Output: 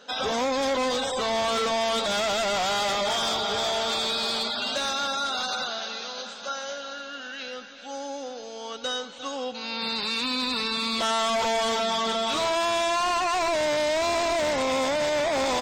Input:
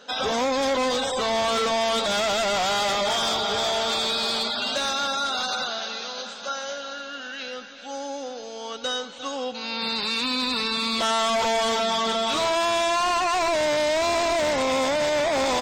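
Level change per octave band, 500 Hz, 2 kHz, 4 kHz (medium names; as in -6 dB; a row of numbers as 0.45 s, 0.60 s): -2.0 dB, -2.0 dB, -2.0 dB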